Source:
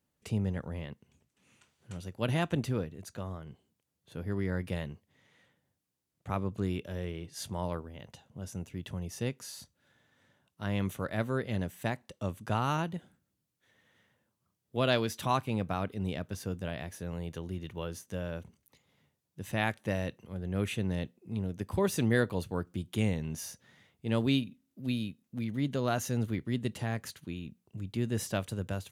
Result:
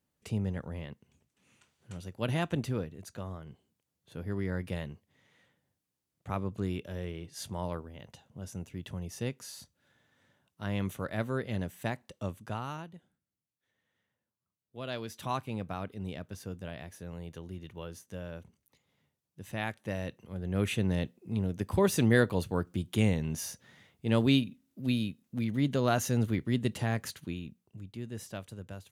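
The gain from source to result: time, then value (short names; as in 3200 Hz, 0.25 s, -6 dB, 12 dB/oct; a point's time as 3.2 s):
12.24 s -1 dB
12.92 s -12.5 dB
14.78 s -12.5 dB
15.28 s -4.5 dB
19.77 s -4.5 dB
20.73 s +3 dB
27.25 s +3 dB
27.99 s -8.5 dB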